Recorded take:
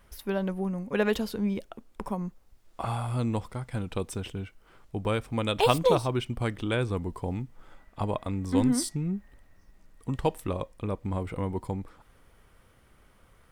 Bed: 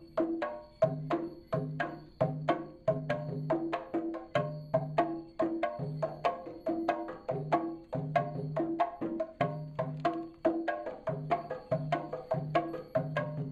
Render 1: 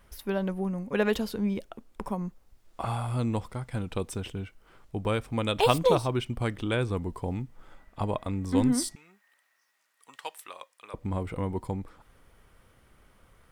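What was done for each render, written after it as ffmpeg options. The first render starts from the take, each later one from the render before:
-filter_complex "[0:a]asettb=1/sr,asplit=3[s0][s1][s2];[s0]atrim=end=8.954[s3];[s1]atrim=start=8.95:end=10.94,asetpts=PTS-STARTPTS,afade=t=in:d=0.004:c=qsin,afade=t=out:st=1.986:d=0.004:c=qsin,highpass=1300[s4];[s2]atrim=start=10.936[s5];[s3][s4]acrossfade=d=0.004:c1=hsin:c2=qsin[s6];[s6][s5]acrossfade=d=0.004:c1=qsin:c2=hsin"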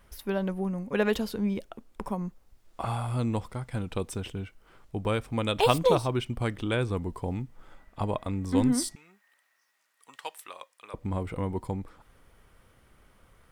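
-af anull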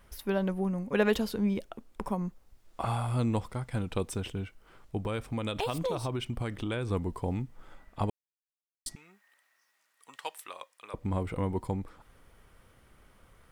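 -filter_complex "[0:a]asettb=1/sr,asplit=3[s0][s1][s2];[s0]atrim=end=4.974[s3];[s1]atrim=start=4.97:end=6.91,asetpts=PTS-STARTPTS,afade=t=in:d=0.004:c=qsin,afade=t=out:st=1.936:d=0.004:c=qsin,acompressor=threshold=0.0398:ratio=6:attack=3.2:release=140:knee=1:detection=peak[s4];[s2]atrim=start=6.906[s5];[s3][s4]acrossfade=d=0.004:c1=hsin:c2=qsin[s6];[s6][s5]acrossfade=d=0.004:c1=qsin:c2=hsin,asplit=3[s7][s8][s9];[s7]atrim=end=8.1,asetpts=PTS-STARTPTS,afade=t=out:st=8.096:d=0.004:c=hsin[s10];[s8]atrim=start=8.1:end=8.86,asetpts=PTS-STARTPTS,volume=0[s11];[s9]atrim=start=8.86,asetpts=PTS-STARTPTS,afade=t=in:d=0.004:c=hsin[s12];[s10][s11][s12]concat=n=3:v=0:a=1"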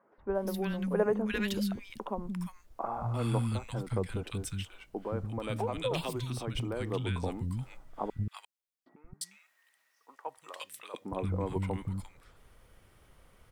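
-filter_complex "[0:a]acrossover=split=230|1400[s0][s1][s2];[s0]adelay=180[s3];[s2]adelay=350[s4];[s3][s1][s4]amix=inputs=3:normalize=0"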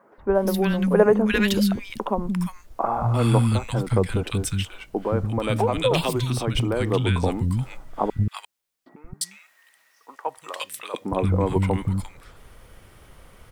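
-af "volume=3.76"

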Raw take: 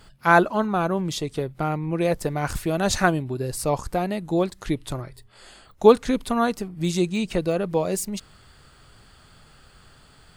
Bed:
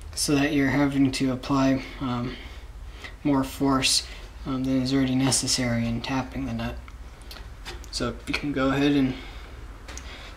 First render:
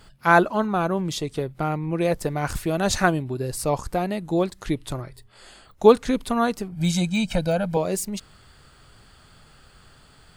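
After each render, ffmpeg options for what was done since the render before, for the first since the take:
-filter_complex "[0:a]asettb=1/sr,asplit=3[s0][s1][s2];[s0]atrim=end=6.724[s3];[s1]atrim=start=6.72:end=7.77,asetpts=PTS-STARTPTS,afade=t=in:d=0.004:c=qsin,afade=t=out:st=1.046:d=0.004:c=qsin,aecho=1:1:1.3:0.96,atrim=end_sample=46305[s4];[s2]atrim=start=7.766[s5];[s3][s4]acrossfade=d=0.004:c1=hsin:c2=qsin[s6];[s6][s5]acrossfade=d=0.004:c1=qsin:c2=hsin"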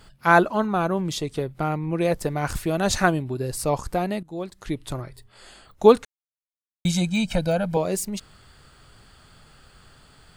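-filter_complex "[0:a]asplit=4[s0][s1][s2][s3];[s0]atrim=end=4.23,asetpts=PTS-STARTPTS,afade=t=out:st=4.226:d=0.004:c=hsin:silence=0.141254[s4];[s1]atrim=start=4.23:end=6.05,asetpts=PTS-STARTPTS,afade=t=in:d=0.76:silence=0.141254,afade=t=out:st=1.816:d=0.004:c=hsin[s5];[s2]atrim=start=6.05:end=6.85,asetpts=PTS-STARTPTS,volume=0[s6];[s3]atrim=start=6.85,asetpts=PTS-STARTPTS,afade=t=in:d=0.004:c=hsin[s7];[s4][s5][s6][s7]concat=n=4:v=0:a=1"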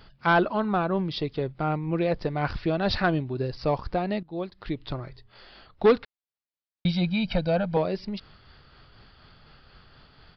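-af "tremolo=f=4.1:d=0.31,aresample=11025,asoftclip=type=tanh:threshold=0.251,aresample=44100"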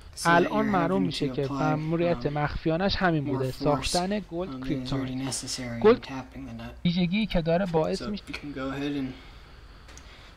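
-filter_complex "[1:a]volume=0.355[s0];[0:a][s0]amix=inputs=2:normalize=0"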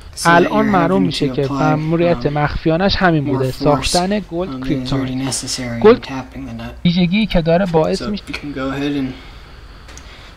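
-af "volume=3.55,alimiter=limit=0.891:level=0:latency=1"

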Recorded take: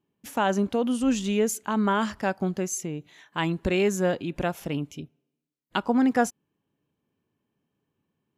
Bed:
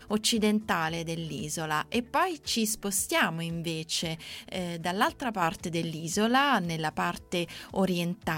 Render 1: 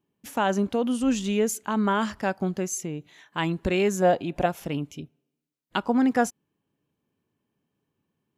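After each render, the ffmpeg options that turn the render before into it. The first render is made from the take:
-filter_complex "[0:a]asettb=1/sr,asplit=3[s0][s1][s2];[s0]atrim=end=4.024[s3];[s1]atrim=start=4.02:end=4.46,asetpts=PTS-STARTPTS,afade=t=in:d=0.004:c=qsin,afade=t=out:st=0.436:d=0.004:c=qsin,equalizer=f=710:w=2.4:g=12[s4];[s2]atrim=start=4.456[s5];[s3][s4]acrossfade=d=0.004:c1=hsin:c2=qsin[s6];[s6][s5]acrossfade=d=0.004:c1=qsin:c2=hsin"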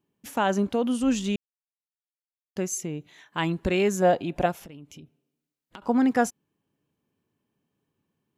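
-filter_complex "[0:a]asettb=1/sr,asplit=3[s0][s1][s2];[s0]atrim=end=4.524[s3];[s1]atrim=start=4.52:end=5.82,asetpts=PTS-STARTPTS,afade=t=in:d=0.004:c=qsin,afade=t=out:st=1.296:d=0.004:c=qsin,acompressor=threshold=0.00794:ratio=6:attack=3.2:release=140:knee=1:detection=peak[s4];[s2]atrim=start=5.816[s5];[s3][s4]acrossfade=d=0.004:c1=hsin:c2=qsin[s6];[s6][s5]acrossfade=d=0.004:c1=qsin:c2=hsin,asplit=3[s7][s8][s9];[s7]atrim=end=1.36,asetpts=PTS-STARTPTS,afade=t=out:st=1.356:d=0.004:c=hsin[s10];[s8]atrim=start=1.36:end=2.56,asetpts=PTS-STARTPTS,volume=0[s11];[s9]atrim=start=2.56,asetpts=PTS-STARTPTS,afade=t=in:d=0.004:c=hsin[s12];[s10][s11][s12]concat=n=3:v=0:a=1"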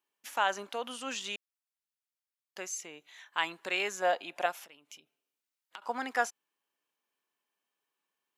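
-filter_complex "[0:a]acrossover=split=5600[s0][s1];[s1]acompressor=threshold=0.00562:ratio=4:attack=1:release=60[s2];[s0][s2]amix=inputs=2:normalize=0,highpass=930"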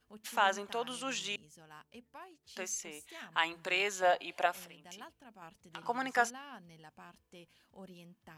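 -filter_complex "[1:a]volume=0.0562[s0];[0:a][s0]amix=inputs=2:normalize=0"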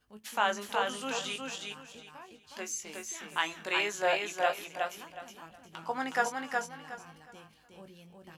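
-filter_complex "[0:a]asplit=2[s0][s1];[s1]adelay=19,volume=0.447[s2];[s0][s2]amix=inputs=2:normalize=0,aecho=1:1:366|732|1098|1464:0.668|0.167|0.0418|0.0104"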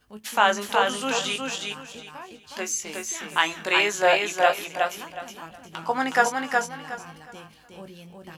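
-af "volume=2.82"

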